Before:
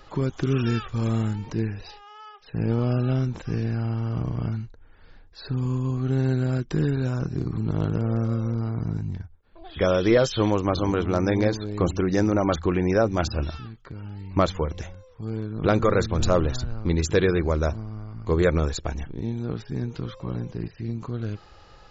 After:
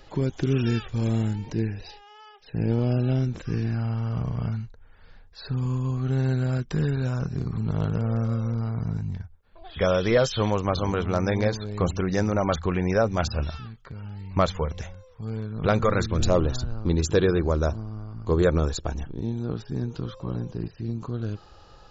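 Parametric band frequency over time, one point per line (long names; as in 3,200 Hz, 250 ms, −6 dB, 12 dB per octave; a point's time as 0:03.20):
parametric band −9.5 dB 0.43 octaves
0:03.23 1,200 Hz
0:03.90 320 Hz
0:15.86 320 Hz
0:16.46 2,100 Hz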